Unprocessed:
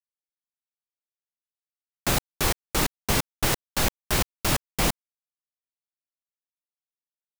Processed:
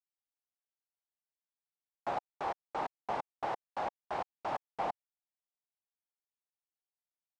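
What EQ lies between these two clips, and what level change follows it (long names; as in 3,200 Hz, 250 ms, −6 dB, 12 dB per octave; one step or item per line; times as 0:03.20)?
resonant band-pass 790 Hz, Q 3.2
high-frequency loss of the air 74 metres
0.0 dB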